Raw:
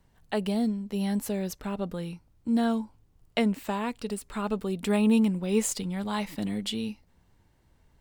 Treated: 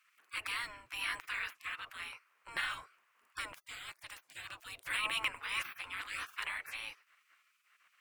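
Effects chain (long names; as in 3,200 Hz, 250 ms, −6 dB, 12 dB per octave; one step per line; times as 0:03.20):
gate on every frequency bin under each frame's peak −30 dB weak
flat-topped bell 1,700 Hz +15 dB, from 0:03.40 +8 dB, from 0:04.88 +14.5 dB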